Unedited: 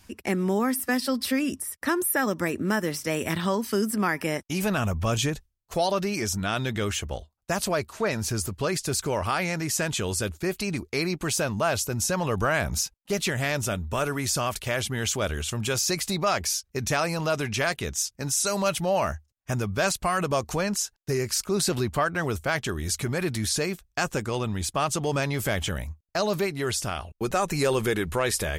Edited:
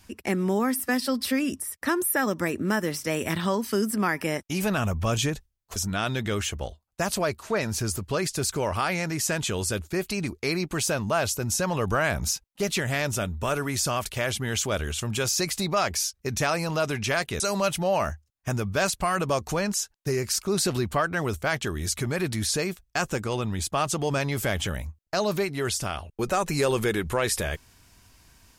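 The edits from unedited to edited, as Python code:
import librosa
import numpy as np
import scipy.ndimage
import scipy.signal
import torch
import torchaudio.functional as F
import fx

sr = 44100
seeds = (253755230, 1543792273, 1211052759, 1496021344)

y = fx.edit(x, sr, fx.cut(start_s=5.76, length_s=0.5),
    fx.cut(start_s=17.9, length_s=0.52), tone=tone)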